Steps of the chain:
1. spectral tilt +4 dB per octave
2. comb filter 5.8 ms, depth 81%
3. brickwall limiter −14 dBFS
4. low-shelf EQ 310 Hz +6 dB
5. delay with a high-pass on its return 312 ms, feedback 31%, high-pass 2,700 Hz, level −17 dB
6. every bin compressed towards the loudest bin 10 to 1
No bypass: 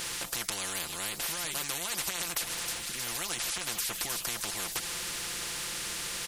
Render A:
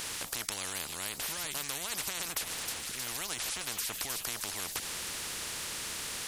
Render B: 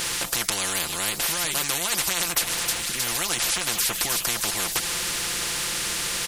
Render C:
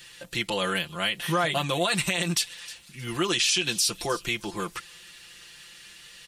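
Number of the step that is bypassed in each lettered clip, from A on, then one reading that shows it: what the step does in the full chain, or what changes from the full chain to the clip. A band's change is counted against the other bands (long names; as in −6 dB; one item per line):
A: 2, change in crest factor +2.0 dB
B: 3, change in integrated loudness +9.0 LU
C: 6, 8 kHz band −11.0 dB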